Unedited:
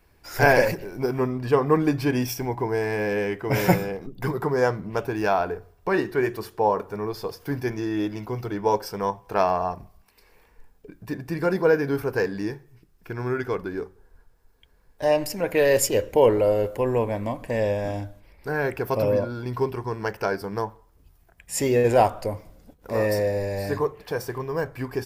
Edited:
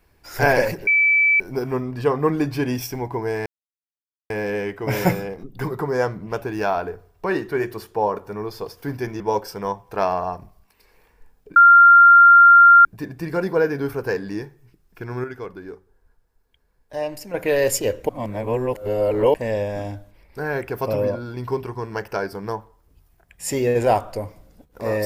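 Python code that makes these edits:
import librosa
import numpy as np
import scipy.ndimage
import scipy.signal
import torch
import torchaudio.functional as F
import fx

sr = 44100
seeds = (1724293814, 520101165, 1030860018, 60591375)

y = fx.edit(x, sr, fx.insert_tone(at_s=0.87, length_s=0.53, hz=2310.0, db=-13.0),
    fx.insert_silence(at_s=2.93, length_s=0.84),
    fx.cut(start_s=7.83, length_s=0.75),
    fx.insert_tone(at_s=10.94, length_s=1.29, hz=1390.0, db=-6.0),
    fx.clip_gain(start_s=13.33, length_s=2.1, db=-6.0),
    fx.reverse_span(start_s=16.18, length_s=1.25), tone=tone)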